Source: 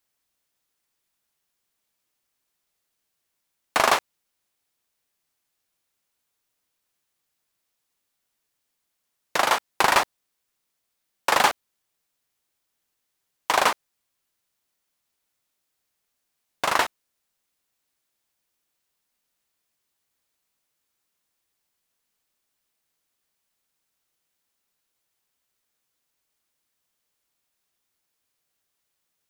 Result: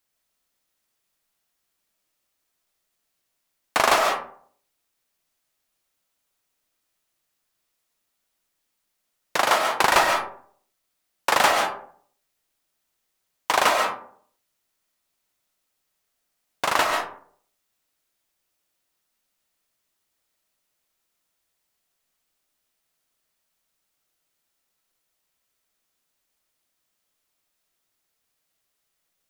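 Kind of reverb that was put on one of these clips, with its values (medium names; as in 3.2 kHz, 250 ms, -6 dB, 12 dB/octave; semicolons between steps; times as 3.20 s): algorithmic reverb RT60 0.56 s, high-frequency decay 0.45×, pre-delay 95 ms, DRR 2 dB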